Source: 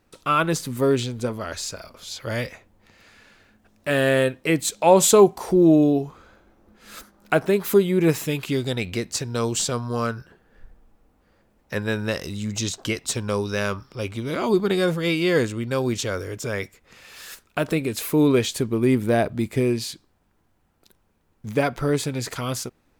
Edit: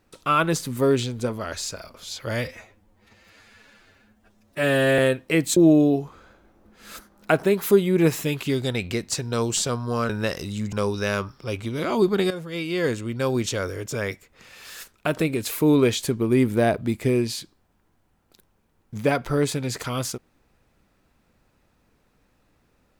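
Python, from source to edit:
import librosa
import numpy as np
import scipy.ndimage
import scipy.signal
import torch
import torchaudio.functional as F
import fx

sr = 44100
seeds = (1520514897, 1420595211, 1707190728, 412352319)

y = fx.edit(x, sr, fx.stretch_span(start_s=2.45, length_s=1.69, factor=1.5),
    fx.cut(start_s=4.72, length_s=0.87),
    fx.cut(start_s=10.12, length_s=1.82),
    fx.cut(start_s=12.57, length_s=0.67),
    fx.fade_in_from(start_s=14.82, length_s=0.97, floor_db=-13.5), tone=tone)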